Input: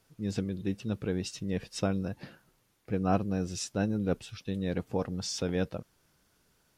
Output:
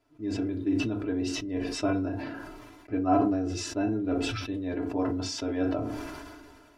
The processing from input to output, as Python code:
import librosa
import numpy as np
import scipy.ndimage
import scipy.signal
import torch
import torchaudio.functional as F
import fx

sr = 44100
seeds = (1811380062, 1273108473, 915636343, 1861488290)

y = fx.lowpass(x, sr, hz=1100.0, slope=6)
y = fx.low_shelf(y, sr, hz=210.0, db=-9.5)
y = y + 0.86 * np.pad(y, (int(3.0 * sr / 1000.0), 0))[:len(y)]
y = fx.rev_fdn(y, sr, rt60_s=0.31, lf_ratio=1.1, hf_ratio=0.65, size_ms=20.0, drr_db=2.0)
y = fx.sustainer(y, sr, db_per_s=30.0)